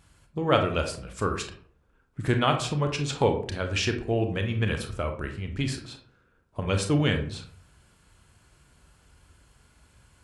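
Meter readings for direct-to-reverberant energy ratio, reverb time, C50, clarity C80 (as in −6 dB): 5.0 dB, 0.55 s, 9.0 dB, 13.0 dB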